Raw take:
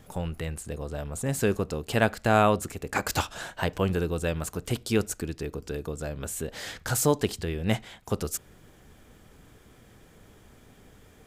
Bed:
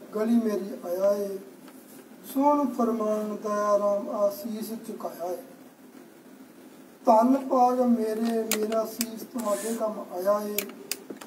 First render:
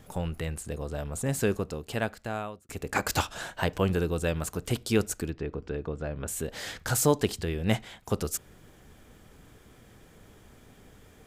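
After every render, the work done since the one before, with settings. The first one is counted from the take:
0:01.22–0:02.69: fade out
0:05.30–0:06.28: low-pass filter 2,600 Hz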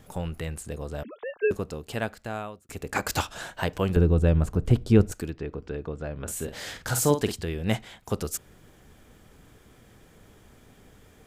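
0:01.03–0:01.51: three sine waves on the formant tracks
0:03.96–0:05.12: spectral tilt −3.5 dB per octave
0:06.22–0:07.34: double-tracking delay 48 ms −8.5 dB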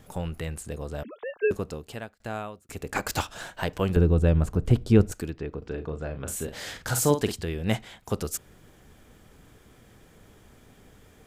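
0:01.73–0:02.20: fade out
0:02.92–0:03.81: gain on one half-wave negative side −3 dB
0:05.58–0:06.43: double-tracking delay 38 ms −8 dB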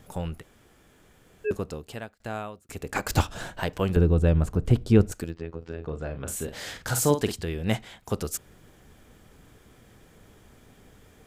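0:00.40–0:01.47: fill with room tone, crossfade 0.06 s
0:03.10–0:03.60: low-shelf EQ 410 Hz +10.5 dB
0:05.24–0:05.86: phases set to zero 82.6 Hz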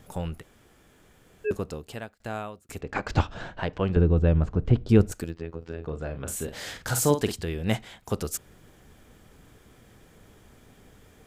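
0:02.81–0:04.89: high-frequency loss of the air 170 metres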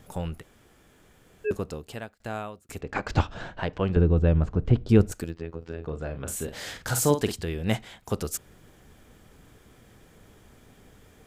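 no processing that can be heard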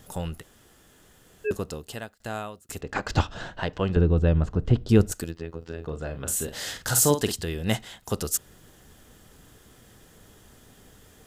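high-shelf EQ 2,900 Hz +7.5 dB
notch filter 2,300 Hz, Q 8.8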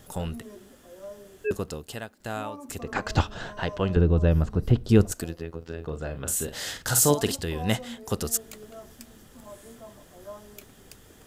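mix in bed −18 dB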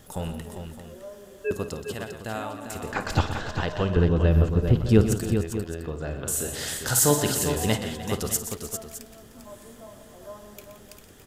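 multi-tap delay 54/124/172/303/399/612 ms −14.5/−11/−14.5/−16/−7.5/−14 dB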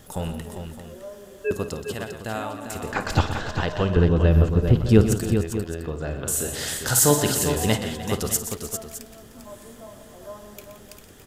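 level +2.5 dB

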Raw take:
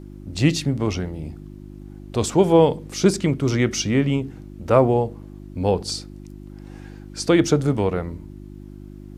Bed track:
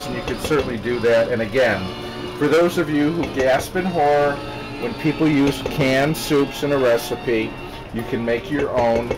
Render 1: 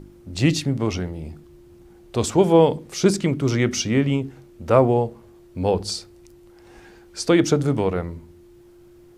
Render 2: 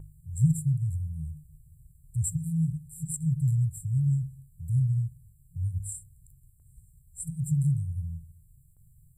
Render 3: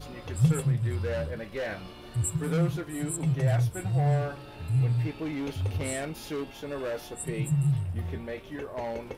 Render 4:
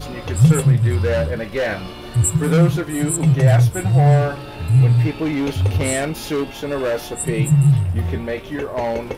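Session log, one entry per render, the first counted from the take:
hum removal 50 Hz, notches 6
brick-wall band-stop 170–7,300 Hz; noise gate with hold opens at −51 dBFS
mix in bed track −16.5 dB
level +12 dB; brickwall limiter −3 dBFS, peak gain reduction 2.5 dB

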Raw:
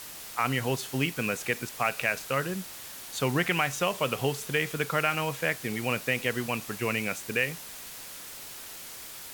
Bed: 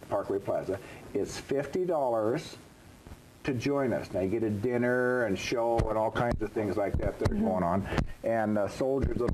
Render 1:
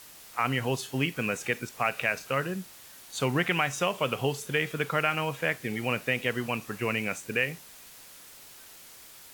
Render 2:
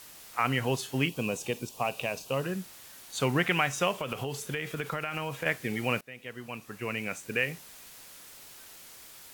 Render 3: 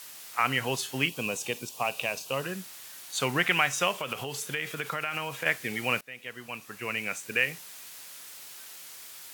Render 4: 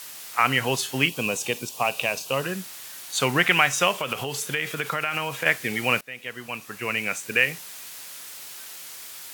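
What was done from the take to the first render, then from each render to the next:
noise reduction from a noise print 7 dB
0:01.08–0:02.44: flat-topped bell 1,700 Hz −14 dB 1 octave; 0:03.98–0:05.46: downward compressor 10 to 1, threshold −28 dBFS; 0:06.01–0:07.66: fade in, from −23 dB
high-pass filter 82 Hz; tilt shelving filter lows −4.5 dB, about 740 Hz
level +5.5 dB

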